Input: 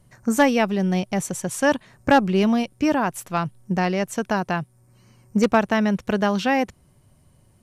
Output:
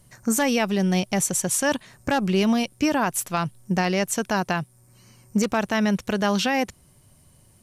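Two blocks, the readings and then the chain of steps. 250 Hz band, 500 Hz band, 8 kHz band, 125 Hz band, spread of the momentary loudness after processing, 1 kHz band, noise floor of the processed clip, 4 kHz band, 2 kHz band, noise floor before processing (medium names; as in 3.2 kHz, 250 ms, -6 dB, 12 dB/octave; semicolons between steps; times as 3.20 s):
-2.0 dB, -3.0 dB, +7.5 dB, -0.5 dB, 6 LU, -3.5 dB, -57 dBFS, +3.0 dB, -1.5 dB, -58 dBFS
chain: treble shelf 3 kHz +9.5 dB; peak limiter -12.5 dBFS, peak gain reduction 8.5 dB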